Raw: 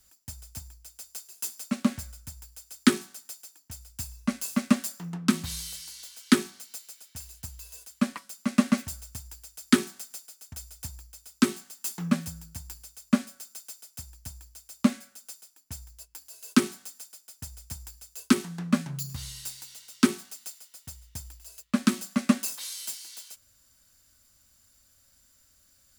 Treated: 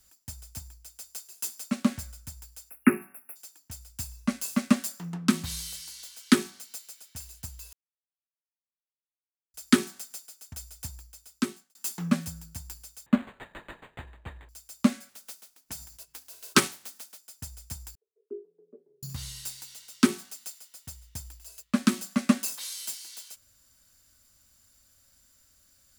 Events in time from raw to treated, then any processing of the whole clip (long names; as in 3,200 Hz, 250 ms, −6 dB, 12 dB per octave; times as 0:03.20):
0:02.70–0:03.36: time-frequency box erased 2,800–10,000 Hz
0:07.73–0:09.54: silence
0:10.78–0:11.75: fade out equal-power
0:13.06–0:14.49: linearly interpolated sample-rate reduction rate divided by 8×
0:15.08–0:17.17: ceiling on every frequency bin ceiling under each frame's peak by 17 dB
0:17.95–0:19.03: flat-topped band-pass 420 Hz, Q 6.7